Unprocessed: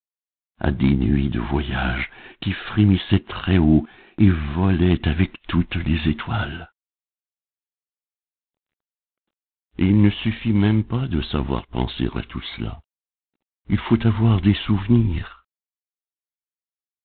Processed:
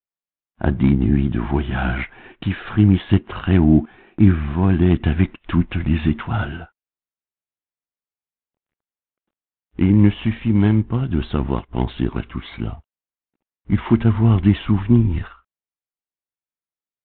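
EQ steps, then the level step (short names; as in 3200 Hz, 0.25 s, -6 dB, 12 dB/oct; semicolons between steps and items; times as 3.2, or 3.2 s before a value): air absorption 400 m; +2.5 dB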